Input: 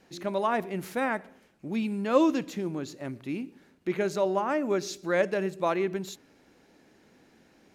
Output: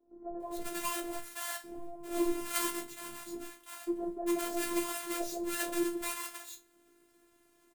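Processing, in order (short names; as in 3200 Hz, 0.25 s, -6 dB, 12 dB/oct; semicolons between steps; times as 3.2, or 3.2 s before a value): half-waves squared off; resonant high shelf 6700 Hz +6.5 dB, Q 1.5; resonator bank B2 major, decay 0.22 s; three bands offset in time mids, lows, highs 60/400 ms, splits 160/740 Hz; robotiser 344 Hz; gain +3.5 dB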